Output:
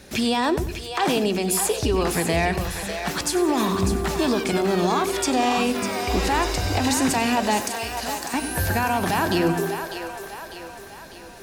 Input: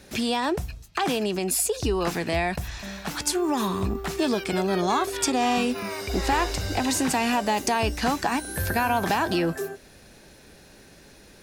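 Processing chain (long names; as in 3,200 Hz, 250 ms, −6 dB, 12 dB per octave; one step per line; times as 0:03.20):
0:07.61–0:08.34: first-order pre-emphasis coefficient 0.8
brickwall limiter −16.5 dBFS, peak gain reduction 7.5 dB
echo with a time of its own for lows and highs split 410 Hz, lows 83 ms, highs 599 ms, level −8 dB
feedback echo at a low word length 95 ms, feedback 35%, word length 9 bits, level −15 dB
level +3.5 dB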